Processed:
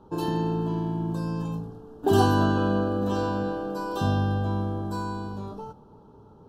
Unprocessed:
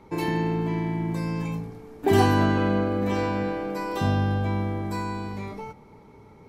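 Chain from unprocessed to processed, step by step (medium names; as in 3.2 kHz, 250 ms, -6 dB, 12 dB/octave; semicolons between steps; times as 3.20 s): Chebyshev band-stop 1.5–3 kHz, order 2; tape noise reduction on one side only decoder only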